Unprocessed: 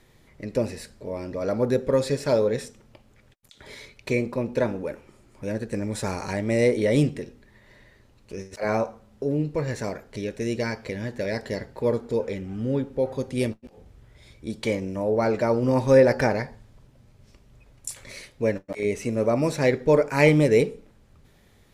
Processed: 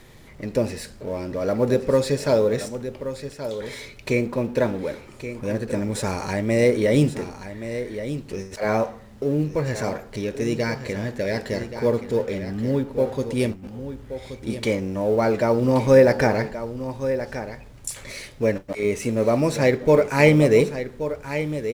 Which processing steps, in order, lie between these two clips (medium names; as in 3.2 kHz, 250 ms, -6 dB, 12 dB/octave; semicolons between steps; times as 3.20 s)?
companding laws mixed up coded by mu; delay 1126 ms -11 dB; trim +2 dB